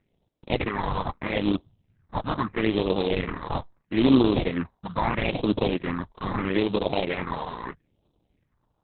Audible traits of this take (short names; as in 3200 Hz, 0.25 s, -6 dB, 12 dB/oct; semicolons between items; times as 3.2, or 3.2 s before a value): aliases and images of a low sample rate 1500 Hz, jitter 20%; phasing stages 4, 0.77 Hz, lowest notch 360–1900 Hz; Opus